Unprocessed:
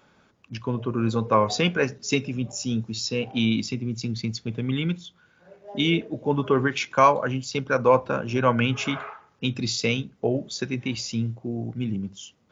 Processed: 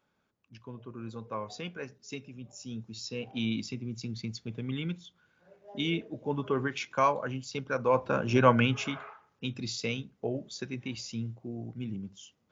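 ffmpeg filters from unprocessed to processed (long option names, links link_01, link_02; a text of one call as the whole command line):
ffmpeg -i in.wav -af "volume=0.5dB,afade=type=in:start_time=2.39:duration=1.13:silence=0.375837,afade=type=in:start_time=7.89:duration=0.47:silence=0.354813,afade=type=out:start_time=8.36:duration=0.59:silence=0.334965" out.wav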